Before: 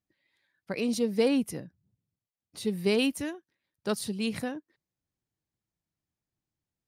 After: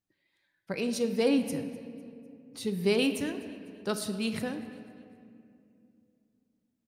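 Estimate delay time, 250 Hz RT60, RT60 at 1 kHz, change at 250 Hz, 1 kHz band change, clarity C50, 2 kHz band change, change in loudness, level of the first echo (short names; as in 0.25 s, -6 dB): 0.251 s, 3.6 s, 2.2 s, -0.5 dB, 0.0 dB, 9.0 dB, 0.0 dB, -1.0 dB, -20.5 dB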